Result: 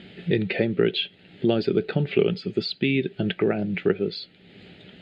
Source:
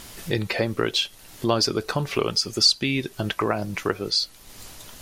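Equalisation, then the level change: speaker cabinet 150–4000 Hz, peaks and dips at 180 Hz +10 dB, 400 Hz +7 dB, 860 Hz +3 dB; low shelf 200 Hz +5 dB; fixed phaser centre 2500 Hz, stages 4; 0.0 dB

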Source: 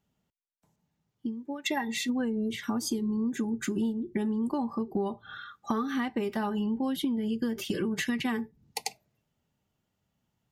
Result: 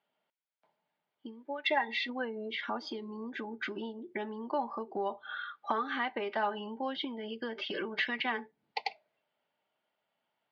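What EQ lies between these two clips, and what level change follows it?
air absorption 230 m; speaker cabinet 480–4900 Hz, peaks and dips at 620 Hz +7 dB, 910 Hz +4 dB, 1500 Hz +5 dB, 2200 Hz +6 dB, 3200 Hz +6 dB, 4600 Hz +6 dB; 0.0 dB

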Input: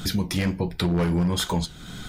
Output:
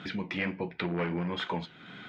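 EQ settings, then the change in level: HPF 220 Hz 12 dB/oct; synth low-pass 2400 Hz, resonance Q 2.2; air absorption 62 m; -5.5 dB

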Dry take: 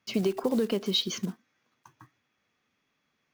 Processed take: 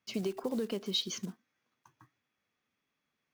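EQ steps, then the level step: dynamic EQ 7200 Hz, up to +5 dB, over -45 dBFS, Q 0.71; -7.5 dB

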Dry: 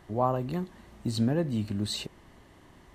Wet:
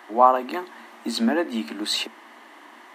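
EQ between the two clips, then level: rippled Chebyshev high-pass 220 Hz, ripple 6 dB; bell 1900 Hz +12.5 dB 2.8 oct; high shelf 11000 Hz +12 dB; +6.0 dB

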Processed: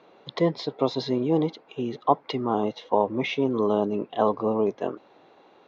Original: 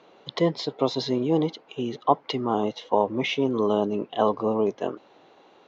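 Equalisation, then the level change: air absorption 91 m; notch 3000 Hz, Q 14; 0.0 dB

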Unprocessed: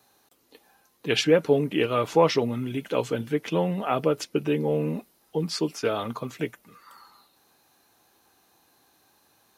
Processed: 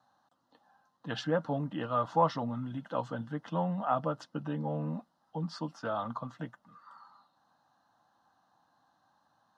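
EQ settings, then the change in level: BPF 130–2700 Hz; fixed phaser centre 970 Hz, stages 4; -1.5 dB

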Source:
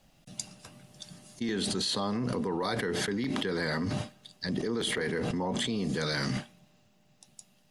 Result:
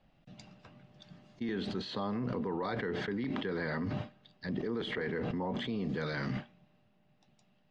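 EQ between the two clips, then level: LPF 3100 Hz 12 dB/oct; air absorption 83 m; -3.5 dB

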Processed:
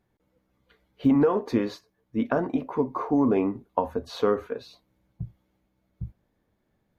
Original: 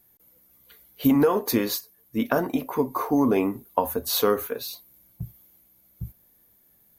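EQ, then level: tape spacing loss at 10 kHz 28 dB; 0.0 dB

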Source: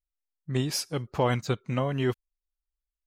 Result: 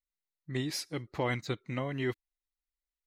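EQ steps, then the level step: thirty-one-band EQ 315 Hz +8 dB, 2000 Hz +11 dB, 4000 Hz +8 dB; -8.0 dB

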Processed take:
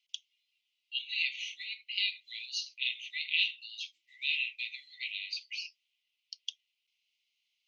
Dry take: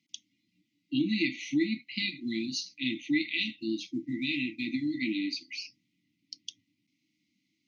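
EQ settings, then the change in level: ladder high-pass 2600 Hz, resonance 65%; +6.0 dB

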